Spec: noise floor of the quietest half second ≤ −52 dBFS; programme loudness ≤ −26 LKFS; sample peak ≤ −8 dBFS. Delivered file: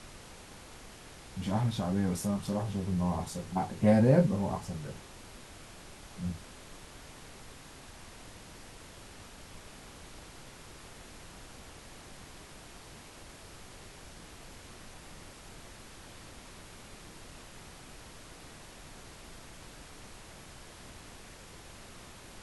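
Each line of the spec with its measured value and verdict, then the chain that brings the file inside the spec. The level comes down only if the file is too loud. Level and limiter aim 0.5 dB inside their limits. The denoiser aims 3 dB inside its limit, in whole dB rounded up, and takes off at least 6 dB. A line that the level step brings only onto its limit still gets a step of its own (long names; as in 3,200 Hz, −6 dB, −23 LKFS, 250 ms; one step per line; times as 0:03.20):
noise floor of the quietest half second −50 dBFS: out of spec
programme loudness −30.5 LKFS: in spec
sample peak −12.0 dBFS: in spec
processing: broadband denoise 6 dB, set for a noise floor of −50 dBFS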